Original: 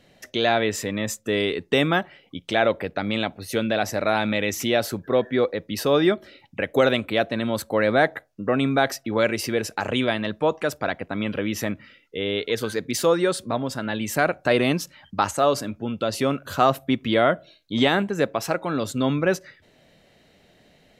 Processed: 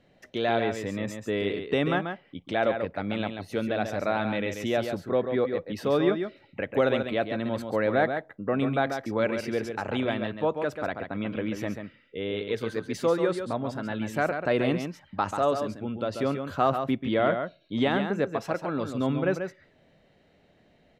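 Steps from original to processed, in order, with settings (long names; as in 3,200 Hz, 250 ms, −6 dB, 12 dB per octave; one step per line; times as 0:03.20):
low-pass filter 1,900 Hz 6 dB per octave
single-tap delay 138 ms −7 dB
level −4.5 dB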